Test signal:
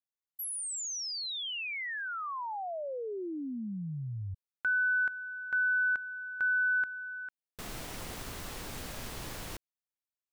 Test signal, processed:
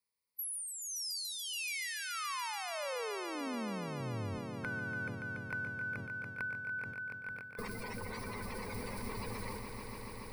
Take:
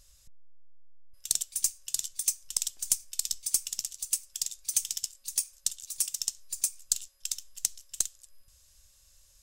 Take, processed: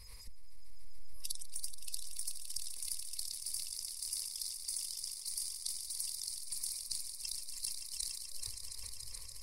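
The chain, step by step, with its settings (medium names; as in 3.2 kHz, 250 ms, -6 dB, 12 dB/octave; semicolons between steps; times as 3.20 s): coarse spectral quantiser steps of 30 dB; rippled EQ curve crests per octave 0.9, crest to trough 14 dB; compression 10:1, threshold -43 dBFS; echo with a slow build-up 143 ms, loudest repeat 5, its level -10.5 dB; decay stretcher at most 42 dB/s; trim +3.5 dB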